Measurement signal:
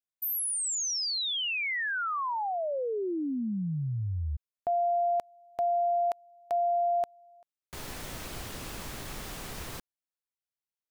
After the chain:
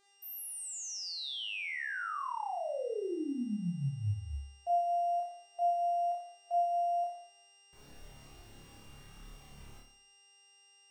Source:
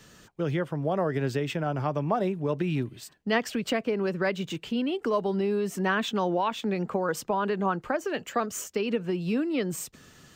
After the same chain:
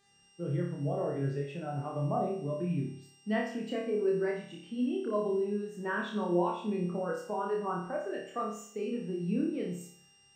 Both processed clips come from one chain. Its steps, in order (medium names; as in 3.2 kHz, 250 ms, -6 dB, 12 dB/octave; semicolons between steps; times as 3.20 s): mains buzz 400 Hz, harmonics 23, -48 dBFS -2 dB/octave; flutter echo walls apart 4.9 m, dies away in 0.8 s; spectral contrast expander 1.5:1; trim -7.5 dB